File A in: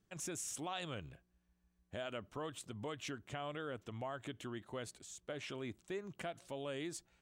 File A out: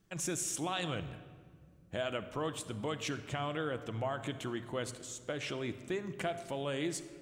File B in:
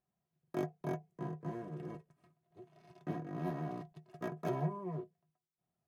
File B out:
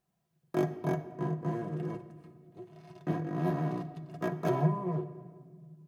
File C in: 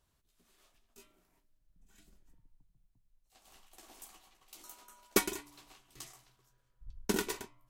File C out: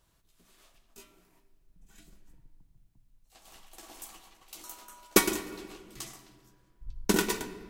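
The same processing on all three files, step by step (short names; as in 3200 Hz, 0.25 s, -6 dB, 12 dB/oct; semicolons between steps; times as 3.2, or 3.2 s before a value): shoebox room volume 2700 m³, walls mixed, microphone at 0.69 m; gain +6.5 dB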